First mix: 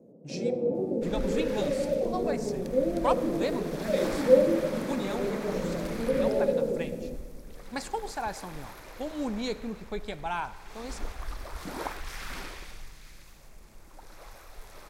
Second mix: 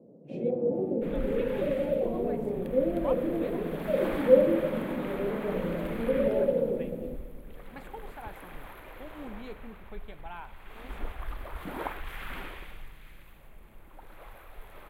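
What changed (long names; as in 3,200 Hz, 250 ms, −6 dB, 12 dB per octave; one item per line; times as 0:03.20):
speech −11.0 dB
master: add drawn EQ curve 3,200 Hz 0 dB, 5,400 Hz −24 dB, 13,000 Hz −1 dB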